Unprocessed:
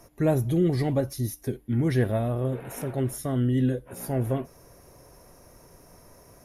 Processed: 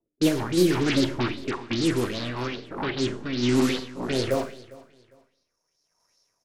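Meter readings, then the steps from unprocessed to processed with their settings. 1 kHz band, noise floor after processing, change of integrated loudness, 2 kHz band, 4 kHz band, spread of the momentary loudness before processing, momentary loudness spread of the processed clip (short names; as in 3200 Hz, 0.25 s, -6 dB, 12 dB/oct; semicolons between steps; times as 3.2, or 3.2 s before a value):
+4.0 dB, -79 dBFS, +1.5 dB, +9.0 dB, +15.5 dB, 9 LU, 10 LU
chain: half-wave gain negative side -7 dB; RIAA curve recording; gate -37 dBFS, range -41 dB; low shelf 160 Hz +6 dB; low-pass sweep 330 Hz -> 5600 Hz, 4.03–5.56; in parallel at -8 dB: sine folder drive 17 dB, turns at -29 dBFS; on the sum: random-step tremolo; rotary speaker horn 6.3 Hz, later 0.9 Hz, at 1.97; on a send: feedback echo 0.403 s, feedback 27%, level -21 dB; on the sum: Schroeder reverb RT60 0.51 s, combs from 33 ms, DRR 8 dB; LFO bell 2.5 Hz 890–4500 Hz +13 dB; gain +8 dB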